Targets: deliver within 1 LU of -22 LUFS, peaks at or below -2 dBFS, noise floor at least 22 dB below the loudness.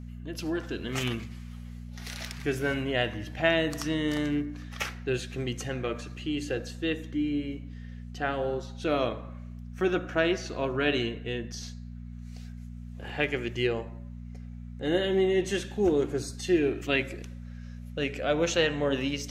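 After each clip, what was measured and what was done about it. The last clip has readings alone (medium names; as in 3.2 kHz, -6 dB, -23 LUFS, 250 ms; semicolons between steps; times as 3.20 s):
hum 60 Hz; highest harmonic 240 Hz; hum level -39 dBFS; loudness -29.5 LUFS; peak level -8.5 dBFS; loudness target -22.0 LUFS
-> de-hum 60 Hz, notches 4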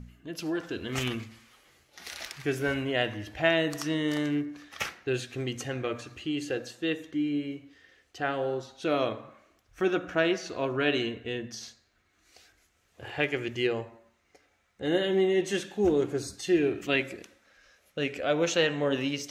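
hum not found; loudness -29.5 LUFS; peak level -8.5 dBFS; loudness target -22.0 LUFS
-> trim +7.5 dB; peak limiter -2 dBFS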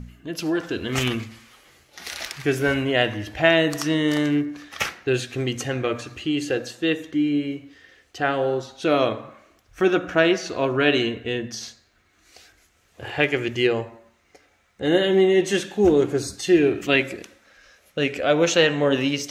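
loudness -22.0 LUFS; peak level -2.0 dBFS; noise floor -62 dBFS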